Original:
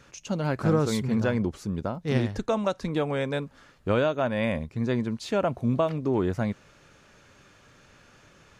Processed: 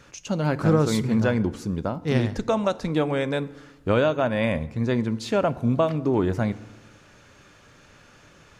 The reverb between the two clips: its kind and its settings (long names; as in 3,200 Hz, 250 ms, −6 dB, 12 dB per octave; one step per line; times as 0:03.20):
feedback delay network reverb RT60 1.1 s, low-frequency decay 1.25×, high-frequency decay 0.65×, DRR 15.5 dB
level +3 dB